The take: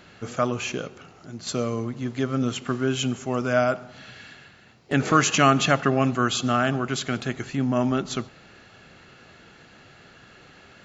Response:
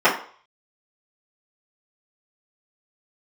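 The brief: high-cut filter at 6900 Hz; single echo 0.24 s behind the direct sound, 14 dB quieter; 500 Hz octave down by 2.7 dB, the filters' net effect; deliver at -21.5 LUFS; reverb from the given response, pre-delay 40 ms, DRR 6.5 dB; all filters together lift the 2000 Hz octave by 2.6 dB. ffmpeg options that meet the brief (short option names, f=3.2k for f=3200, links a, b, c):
-filter_complex "[0:a]lowpass=6.9k,equalizer=f=500:t=o:g=-4,equalizer=f=2k:t=o:g=4,aecho=1:1:240:0.2,asplit=2[a][b];[1:a]atrim=start_sample=2205,adelay=40[c];[b][c]afir=irnorm=-1:irlink=0,volume=-29.5dB[d];[a][d]amix=inputs=2:normalize=0,volume=2dB"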